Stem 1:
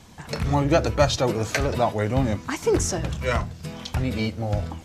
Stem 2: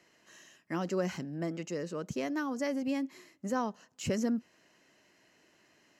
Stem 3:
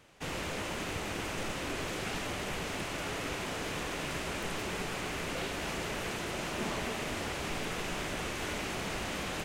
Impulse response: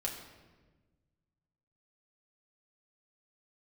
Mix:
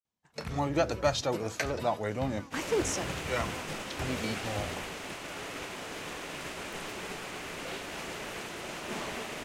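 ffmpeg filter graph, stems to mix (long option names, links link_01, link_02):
-filter_complex "[0:a]adelay=50,volume=-7dB[link_01];[1:a]volume=-14.5dB[link_02];[2:a]adelay=2300,volume=0dB[link_03];[link_01][link_02][link_03]amix=inputs=3:normalize=0,agate=range=-33dB:threshold=-33dB:ratio=3:detection=peak,lowshelf=frequency=150:gain=-9"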